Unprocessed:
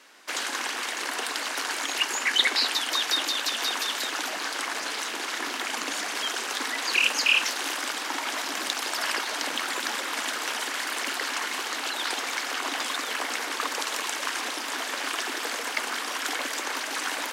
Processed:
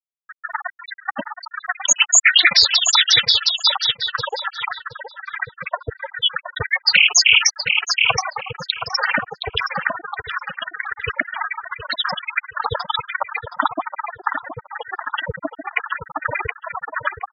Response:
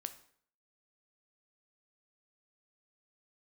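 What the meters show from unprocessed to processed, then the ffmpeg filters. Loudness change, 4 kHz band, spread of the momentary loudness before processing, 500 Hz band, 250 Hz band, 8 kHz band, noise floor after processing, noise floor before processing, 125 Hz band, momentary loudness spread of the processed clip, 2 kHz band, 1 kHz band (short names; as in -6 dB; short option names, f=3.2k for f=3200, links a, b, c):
+9.0 dB, +9.0 dB, 7 LU, +5.0 dB, +1.5 dB, +9.5 dB, -61 dBFS, -33 dBFS, n/a, 18 LU, +7.5 dB, +6.0 dB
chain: -filter_complex "[0:a]afftfilt=real='re*gte(hypot(re,im),0.126)':imag='im*gte(hypot(re,im),0.126)':win_size=1024:overlap=0.75,equalizer=f=120:t=o:w=1.8:g=9,aeval=exprs='val(0)*sin(2*PI*180*n/s)':c=same,aexciter=amount=13.3:drive=1.7:freq=5.7k,asplit=2[a][b];[b]adelay=720,lowpass=f=3.4k:p=1,volume=-9.5dB,asplit=2[c][d];[d]adelay=720,lowpass=f=3.4k:p=1,volume=0.21,asplit=2[e][f];[f]adelay=720,lowpass=f=3.4k:p=1,volume=0.21[g];[c][e][g]amix=inputs=3:normalize=0[h];[a][h]amix=inputs=2:normalize=0,alimiter=level_in=20dB:limit=-1dB:release=50:level=0:latency=1,volume=-1dB"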